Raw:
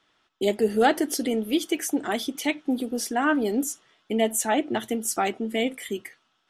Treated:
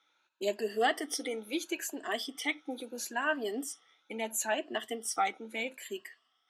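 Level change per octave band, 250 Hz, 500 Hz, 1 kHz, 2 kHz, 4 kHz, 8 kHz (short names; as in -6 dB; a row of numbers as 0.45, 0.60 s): -14.5, -9.5, -7.5, -4.5, -5.5, -7.5 dB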